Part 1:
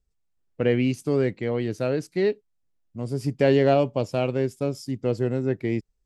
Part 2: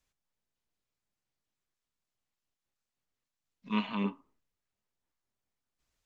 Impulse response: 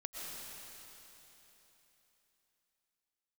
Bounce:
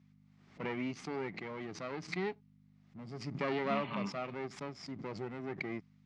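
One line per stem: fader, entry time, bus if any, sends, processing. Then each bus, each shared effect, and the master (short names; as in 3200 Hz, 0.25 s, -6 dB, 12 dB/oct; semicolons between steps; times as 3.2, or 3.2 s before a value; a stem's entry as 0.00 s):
-10.5 dB, 0.00 s, no send, half-wave gain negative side -12 dB; backwards sustainer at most 79 dB/s
0.0 dB, 0.00 s, no send, compressor, threshold -38 dBFS, peak gain reduction 12.5 dB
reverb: off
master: hum 50 Hz, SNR 20 dB; speaker cabinet 150–5500 Hz, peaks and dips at 170 Hz +9 dB, 500 Hz -7 dB, 770 Hz +3 dB, 1200 Hz +6 dB, 2100 Hz +9 dB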